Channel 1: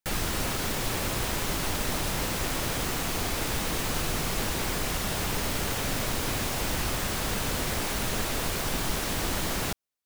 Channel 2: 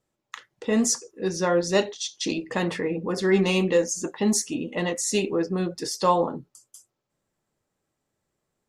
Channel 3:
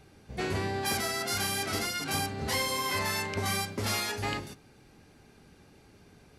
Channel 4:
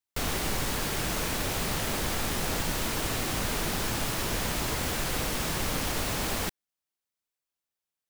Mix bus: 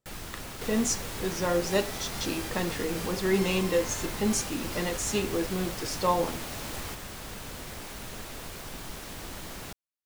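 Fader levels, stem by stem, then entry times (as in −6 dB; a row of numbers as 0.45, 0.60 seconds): −11.0, −5.0, −12.5, −9.0 decibels; 0.00, 0.00, 0.85, 0.45 seconds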